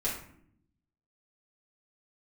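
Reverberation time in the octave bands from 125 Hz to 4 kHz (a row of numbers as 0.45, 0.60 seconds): 1.2, 1.1, 0.70, 0.55, 0.55, 0.40 seconds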